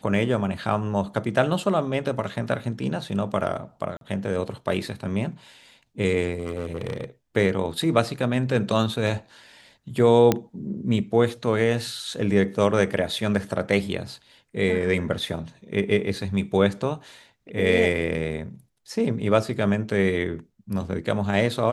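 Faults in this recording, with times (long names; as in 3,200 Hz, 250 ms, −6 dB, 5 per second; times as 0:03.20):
0:03.97–0:04.01: drop-out 42 ms
0:06.39–0:07.04: clipping −23.5 dBFS
0:10.32: click −6 dBFS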